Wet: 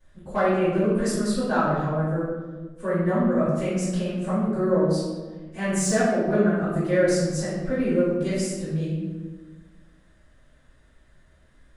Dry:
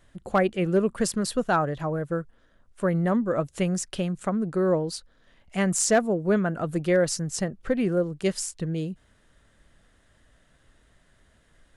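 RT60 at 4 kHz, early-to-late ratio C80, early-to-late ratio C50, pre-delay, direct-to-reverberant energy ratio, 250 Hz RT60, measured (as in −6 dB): 0.80 s, 2.0 dB, −1.5 dB, 3 ms, −17.5 dB, 1.8 s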